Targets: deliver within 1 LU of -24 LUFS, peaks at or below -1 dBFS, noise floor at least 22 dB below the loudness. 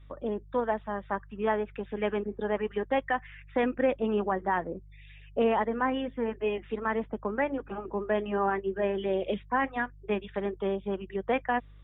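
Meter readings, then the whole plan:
hum 50 Hz; harmonics up to 150 Hz; hum level -48 dBFS; loudness -30.5 LUFS; peak -15.0 dBFS; loudness target -24.0 LUFS
-> de-hum 50 Hz, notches 3; gain +6.5 dB

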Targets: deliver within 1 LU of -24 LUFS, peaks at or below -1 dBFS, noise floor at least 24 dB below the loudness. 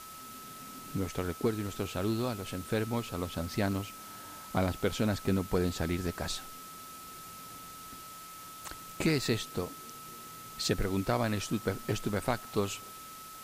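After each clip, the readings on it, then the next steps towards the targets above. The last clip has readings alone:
steady tone 1300 Hz; tone level -47 dBFS; noise floor -47 dBFS; noise floor target -58 dBFS; loudness -33.5 LUFS; peak -16.0 dBFS; loudness target -24.0 LUFS
-> notch 1300 Hz, Q 30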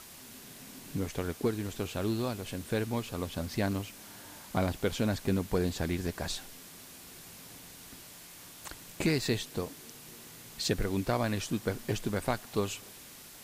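steady tone none; noise floor -50 dBFS; noise floor target -58 dBFS
-> denoiser 8 dB, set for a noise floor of -50 dBFS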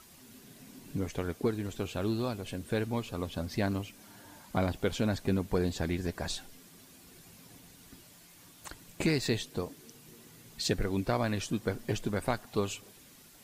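noise floor -56 dBFS; noise floor target -58 dBFS
-> denoiser 6 dB, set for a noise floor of -56 dBFS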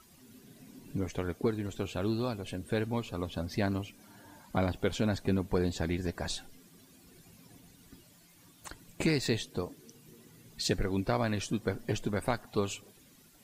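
noise floor -60 dBFS; loudness -33.5 LUFS; peak -16.0 dBFS; loudness target -24.0 LUFS
-> gain +9.5 dB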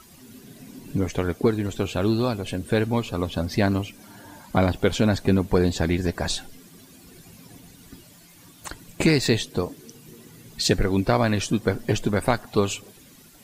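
loudness -24.0 LUFS; peak -6.5 dBFS; noise floor -50 dBFS

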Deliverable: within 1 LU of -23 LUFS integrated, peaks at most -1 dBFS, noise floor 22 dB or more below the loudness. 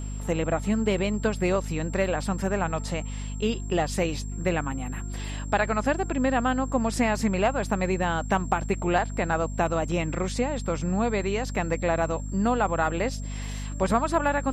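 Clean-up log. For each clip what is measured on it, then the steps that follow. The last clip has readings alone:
hum 50 Hz; harmonics up to 250 Hz; hum level -30 dBFS; steady tone 7500 Hz; tone level -45 dBFS; loudness -27.0 LUFS; peak -10.5 dBFS; loudness target -23.0 LUFS
-> notches 50/100/150/200/250 Hz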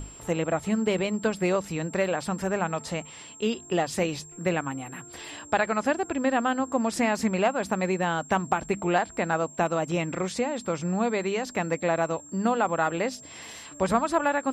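hum none; steady tone 7500 Hz; tone level -45 dBFS
-> notch 7500 Hz, Q 30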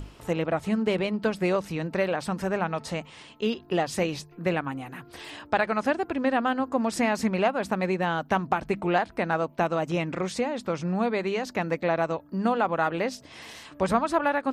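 steady tone none; loudness -27.5 LUFS; peak -10.5 dBFS; loudness target -23.0 LUFS
-> gain +4.5 dB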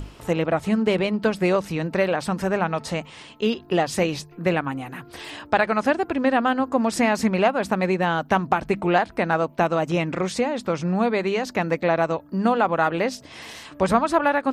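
loudness -23.0 LUFS; peak -6.0 dBFS; noise floor -47 dBFS

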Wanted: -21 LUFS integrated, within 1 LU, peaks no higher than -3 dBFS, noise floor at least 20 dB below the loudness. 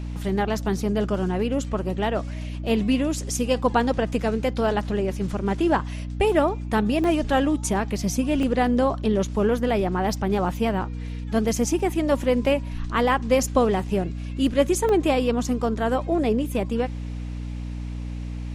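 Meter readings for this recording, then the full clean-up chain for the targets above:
dropouts 4; longest dropout 1.1 ms; hum 60 Hz; harmonics up to 300 Hz; hum level -28 dBFS; loudness -24.0 LUFS; peak -7.0 dBFS; loudness target -21.0 LUFS
-> interpolate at 7.04/8.43/11.79/14.89, 1.1 ms; notches 60/120/180/240/300 Hz; gain +3 dB

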